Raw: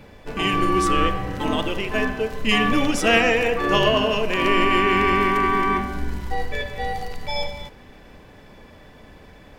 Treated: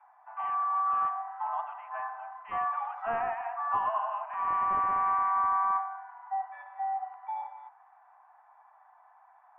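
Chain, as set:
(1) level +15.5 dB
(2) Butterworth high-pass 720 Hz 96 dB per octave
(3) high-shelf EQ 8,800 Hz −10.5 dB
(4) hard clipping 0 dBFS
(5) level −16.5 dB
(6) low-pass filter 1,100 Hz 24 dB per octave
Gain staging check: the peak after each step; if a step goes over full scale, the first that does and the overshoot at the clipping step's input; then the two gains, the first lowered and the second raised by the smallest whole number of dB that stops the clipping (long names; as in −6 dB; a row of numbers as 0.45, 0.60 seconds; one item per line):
+11.5, +9.0, +8.5, 0.0, −16.5, −18.5 dBFS
step 1, 8.5 dB
step 1 +6.5 dB, step 5 −7.5 dB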